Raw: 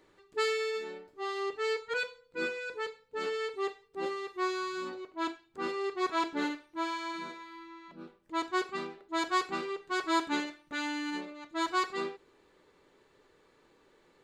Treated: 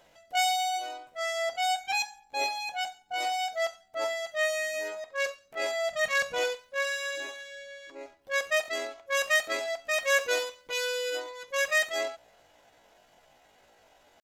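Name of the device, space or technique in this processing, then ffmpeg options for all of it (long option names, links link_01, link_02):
chipmunk voice: -filter_complex "[0:a]asetrate=74167,aresample=44100,atempo=0.594604,asettb=1/sr,asplit=3[link_01][link_02][link_03];[link_01]atrim=end=5.904[link_04];[link_02]atrim=start=5.9:end=6.39,asetpts=PTS-STARTPTS,afade=type=in:duration=0.004:curve=qsin,afade=type=out:start_time=0.486:duration=0.004:curve=qsin,lowshelf=frequency=250:width_type=q:width=3:gain=9[link_05];[link_03]atrim=start=6.386[link_06];[link_04][link_05]acrossfade=duration=0.004:curve1=hsin:curve2=qsin[link_07];[link_07][link_06]acrossfade=duration=0.004:curve1=qsin:curve2=hsin,volume=4dB"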